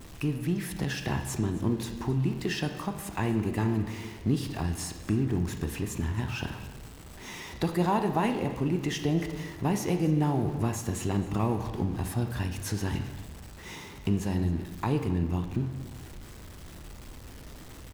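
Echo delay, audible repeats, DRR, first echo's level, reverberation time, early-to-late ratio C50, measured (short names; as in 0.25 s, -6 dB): 0.267 s, 1, 6.0 dB, -19.0 dB, 1.1 s, 8.5 dB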